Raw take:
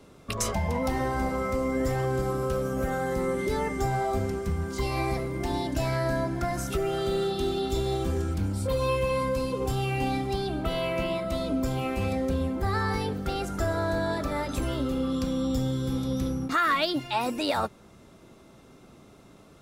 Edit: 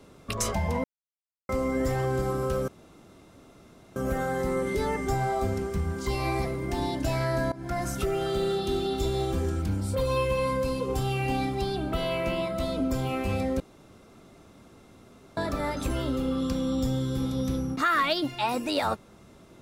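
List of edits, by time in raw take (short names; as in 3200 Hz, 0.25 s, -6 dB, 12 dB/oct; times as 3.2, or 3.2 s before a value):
0.84–1.49 mute
2.68 insert room tone 1.28 s
6.24–6.51 fade in, from -19 dB
12.32–14.09 room tone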